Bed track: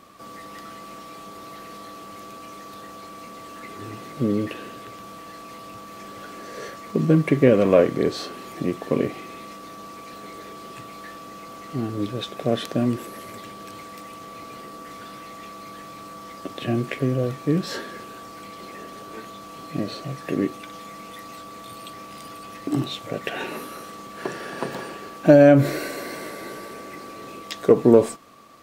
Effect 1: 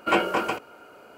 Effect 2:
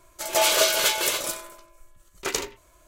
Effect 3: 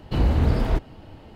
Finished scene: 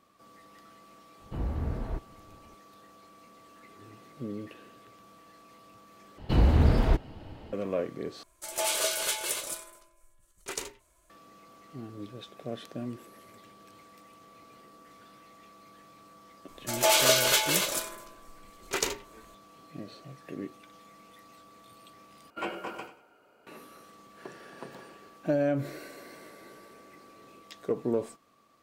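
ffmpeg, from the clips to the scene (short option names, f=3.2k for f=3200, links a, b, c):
-filter_complex "[3:a]asplit=2[a][b];[2:a]asplit=2[c][d];[0:a]volume=-15dB[e];[a]lowpass=1.9k[f];[c]equalizer=f=9.3k:t=o:w=0.49:g=8[g];[1:a]aecho=1:1:97|194|291:0.237|0.0617|0.016[h];[e]asplit=4[i][j][k][l];[i]atrim=end=6.184[m];[b]atrim=end=1.35,asetpts=PTS-STARTPTS,volume=-1.5dB[n];[j]atrim=start=7.526:end=8.234[o];[g]atrim=end=2.87,asetpts=PTS-STARTPTS,volume=-10dB[p];[k]atrim=start=11.096:end=22.304[q];[h]atrim=end=1.17,asetpts=PTS-STARTPTS,volume=-13.5dB[r];[l]atrim=start=23.466[s];[f]atrim=end=1.35,asetpts=PTS-STARTPTS,volume=-12.5dB,afade=t=in:d=0.004:c=hsin,afade=t=out:st=1.346:d=0.004:c=hsin,adelay=1200[t];[d]atrim=end=2.87,asetpts=PTS-STARTPTS,volume=-2dB,afade=t=in:d=0.004:c=hsin,afade=t=out:st=2.866:d=0.004:c=hsin,adelay=16480[u];[m][n]acrossfade=d=0.004:c1=hsin:c2=hsin[v];[v][o]acrossfade=d=0.004:c1=hsin:c2=hsin[w];[w][p]acrossfade=d=0.004:c1=hsin:c2=hsin[x];[x][q]acrossfade=d=0.004:c1=hsin:c2=hsin[y];[y][r]acrossfade=d=0.004:c1=hsin:c2=hsin[z];[z][s]acrossfade=d=0.004:c1=hsin:c2=hsin[aa];[aa][t][u]amix=inputs=3:normalize=0"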